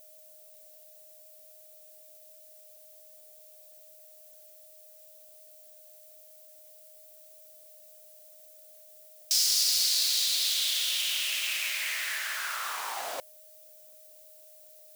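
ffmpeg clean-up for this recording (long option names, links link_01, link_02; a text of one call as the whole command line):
ffmpeg -i in.wav -af "bandreject=frequency=620:width=30,afftdn=noise_reduction=23:noise_floor=-54" out.wav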